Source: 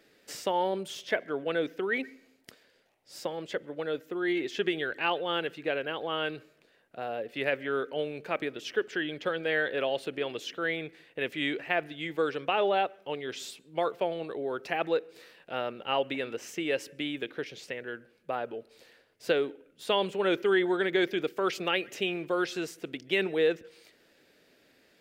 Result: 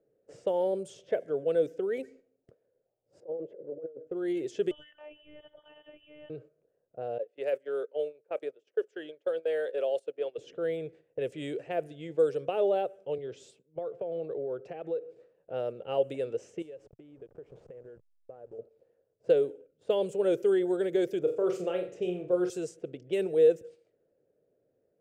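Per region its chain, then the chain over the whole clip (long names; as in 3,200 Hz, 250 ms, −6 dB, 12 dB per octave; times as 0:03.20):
0:03.20–0:04.07: resonant band-pass 420 Hz, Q 1.5 + compressor whose output falls as the input rises −40 dBFS, ratio −0.5
0:04.71–0:06.30: voice inversion scrambler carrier 3,400 Hz + downward compressor 3 to 1, threshold −38 dBFS + phases set to zero 300 Hz
0:07.18–0:10.38: noise gate −36 dBFS, range −17 dB + high-pass filter 430 Hz
0:13.18–0:15.06: downward compressor 16 to 1, threshold −31 dBFS + multiband upward and downward expander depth 40%
0:16.62–0:18.59: hold until the input has moved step −43.5 dBFS + downward compressor, threshold −44 dBFS
0:21.19–0:22.50: high-shelf EQ 3,100 Hz −11.5 dB + double-tracking delay 28 ms −8 dB + flutter between parallel walls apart 7.6 metres, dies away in 0.37 s
whole clip: noise gate −51 dBFS, range −8 dB; low-pass that shuts in the quiet parts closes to 1,200 Hz, open at −26 dBFS; graphic EQ with 10 bands 125 Hz +8 dB, 250 Hz −6 dB, 500 Hz +12 dB, 1,000 Hz −9 dB, 2,000 Hz −10 dB, 4,000 Hz −9 dB, 8,000 Hz +11 dB; level −4 dB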